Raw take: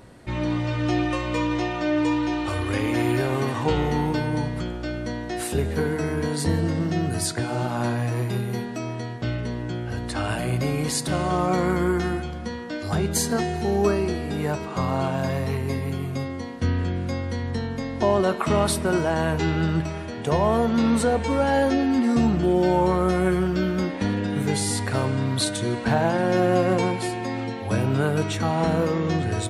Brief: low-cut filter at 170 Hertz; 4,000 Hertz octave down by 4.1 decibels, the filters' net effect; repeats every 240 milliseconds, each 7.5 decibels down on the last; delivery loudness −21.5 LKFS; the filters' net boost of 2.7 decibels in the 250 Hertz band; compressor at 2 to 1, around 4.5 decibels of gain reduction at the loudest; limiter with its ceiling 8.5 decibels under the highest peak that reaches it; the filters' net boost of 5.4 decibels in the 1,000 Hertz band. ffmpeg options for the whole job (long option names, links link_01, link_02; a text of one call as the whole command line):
ffmpeg -i in.wav -af "highpass=170,equalizer=frequency=250:width_type=o:gain=4.5,equalizer=frequency=1000:width_type=o:gain=7,equalizer=frequency=4000:width_type=o:gain=-5.5,acompressor=threshold=-21dB:ratio=2,alimiter=limit=-16.5dB:level=0:latency=1,aecho=1:1:240|480|720|960|1200:0.422|0.177|0.0744|0.0312|0.0131,volume=4dB" out.wav